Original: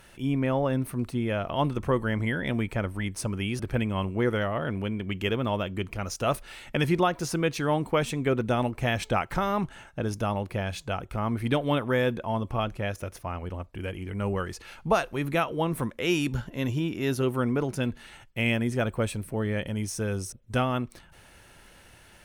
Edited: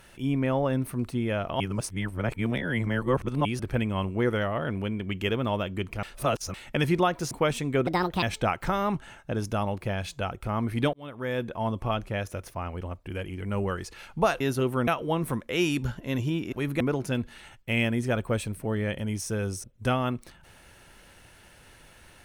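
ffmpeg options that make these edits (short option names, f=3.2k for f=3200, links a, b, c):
-filter_complex "[0:a]asplit=13[a][b][c][d][e][f][g][h][i][j][k][l][m];[a]atrim=end=1.602[n];[b]atrim=start=1.598:end=3.452,asetpts=PTS-STARTPTS,areverse[o];[c]atrim=start=3.448:end=6.032[p];[d]atrim=start=6.028:end=6.542,asetpts=PTS-STARTPTS,areverse[q];[e]atrim=start=6.538:end=7.312[r];[f]atrim=start=7.828:end=8.394[s];[g]atrim=start=8.39:end=8.91,asetpts=PTS-STARTPTS,asetrate=64827,aresample=44100[t];[h]atrim=start=8.906:end=11.62,asetpts=PTS-STARTPTS,afade=t=out:st=2.71:d=0.004:c=hsin[u];[i]atrim=start=11.62:end=15.092,asetpts=PTS-STARTPTS,afade=t=in:d=0.72[v];[j]atrim=start=17.018:end=17.492[w];[k]atrim=start=15.368:end=17.022[x];[l]atrim=start=15.088:end=15.372[y];[m]atrim=start=17.488[z];[n][o]acrossfade=d=0.004:c1=hsin:c2=hsin[aa];[aa][p]acrossfade=d=0.004:c1=hsin:c2=hsin[ab];[ab][q]acrossfade=d=0.004:c1=hsin:c2=hsin[ac];[ac][r]acrossfade=d=0.004:c1=hsin:c2=hsin[ad];[ad][s]acrossfade=d=0.004:c1=hsin:c2=hsin[ae];[ae][t]acrossfade=d=0.004:c1=hsin:c2=hsin[af];[u][v]concat=n=2:v=0:a=1[ag];[af][ag]acrossfade=d=0.004:c1=hsin:c2=hsin[ah];[ah][w]acrossfade=d=0.004:c1=hsin:c2=hsin[ai];[ai][x]acrossfade=d=0.004:c1=hsin:c2=hsin[aj];[aj][y]acrossfade=d=0.004:c1=hsin:c2=hsin[ak];[ak][z]acrossfade=d=0.004:c1=hsin:c2=hsin"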